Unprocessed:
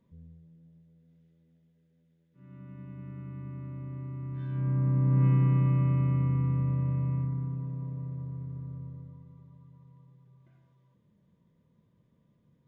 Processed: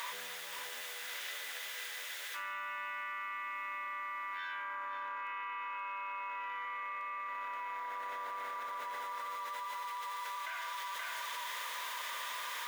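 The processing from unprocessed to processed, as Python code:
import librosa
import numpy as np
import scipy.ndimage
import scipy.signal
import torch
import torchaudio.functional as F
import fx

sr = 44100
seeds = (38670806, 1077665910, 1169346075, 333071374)

p1 = scipy.signal.sosfilt(scipy.signal.butter(4, 1100.0, 'highpass', fs=sr, output='sos'), x)
p2 = p1 + fx.echo_single(p1, sr, ms=526, db=-6.0, dry=0)
p3 = fx.env_flatten(p2, sr, amount_pct=100)
y = p3 * librosa.db_to_amplitude(6.5)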